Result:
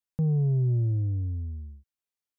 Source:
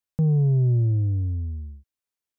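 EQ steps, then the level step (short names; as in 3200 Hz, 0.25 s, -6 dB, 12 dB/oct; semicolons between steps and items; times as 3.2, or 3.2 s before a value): notch 630 Hz, Q 17; -4.5 dB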